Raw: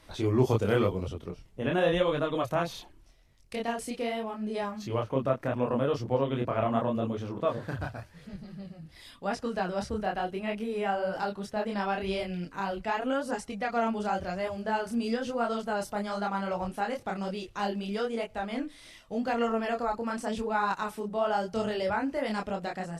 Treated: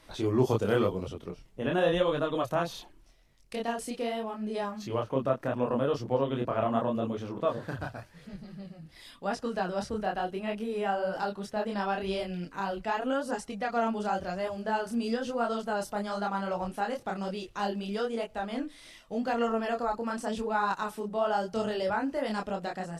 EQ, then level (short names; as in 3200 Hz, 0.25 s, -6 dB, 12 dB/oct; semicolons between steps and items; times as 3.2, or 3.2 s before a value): dynamic EQ 2200 Hz, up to -6 dB, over -54 dBFS, Q 4.5; bell 77 Hz -6.5 dB 1.2 oct; 0.0 dB